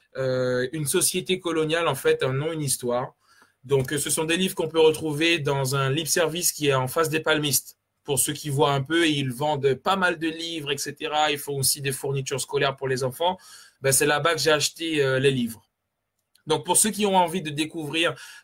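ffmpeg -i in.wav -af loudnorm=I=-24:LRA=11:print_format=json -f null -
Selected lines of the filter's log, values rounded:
"input_i" : "-23.3",
"input_tp" : "-5.1",
"input_lra" : "1.7",
"input_thresh" : "-33.8",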